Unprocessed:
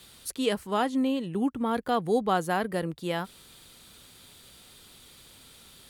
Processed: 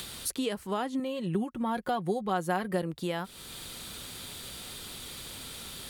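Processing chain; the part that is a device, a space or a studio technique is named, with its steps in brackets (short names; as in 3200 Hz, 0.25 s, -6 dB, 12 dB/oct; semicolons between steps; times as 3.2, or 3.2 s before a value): upward and downward compression (upward compressor, threshold -45 dBFS; compressor 4:1, threshold -39 dBFS, peak gain reduction 16 dB); 0.99–2.82 comb 5.5 ms, depth 57%; gain +8 dB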